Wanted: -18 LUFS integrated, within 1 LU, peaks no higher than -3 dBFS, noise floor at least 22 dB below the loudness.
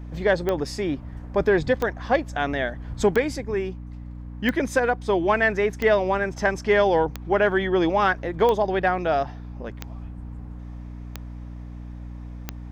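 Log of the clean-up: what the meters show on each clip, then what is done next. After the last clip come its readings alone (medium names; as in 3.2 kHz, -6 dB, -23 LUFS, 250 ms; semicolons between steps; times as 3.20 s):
clicks found 10; hum 60 Hz; highest harmonic 300 Hz; hum level -34 dBFS; loudness -23.0 LUFS; peak level -9.5 dBFS; loudness target -18.0 LUFS
-> de-click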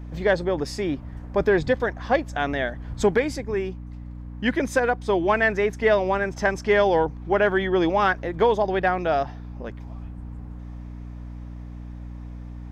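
clicks found 0; hum 60 Hz; highest harmonic 300 Hz; hum level -34 dBFS
-> hum notches 60/120/180/240/300 Hz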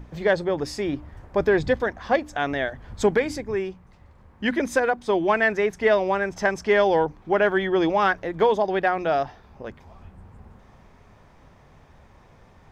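hum not found; loudness -23.0 LUFS; peak level -9.5 dBFS; loudness target -18.0 LUFS
-> trim +5 dB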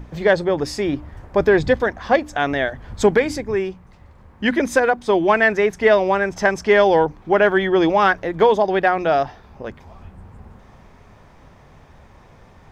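loudness -18.0 LUFS; peak level -4.5 dBFS; noise floor -48 dBFS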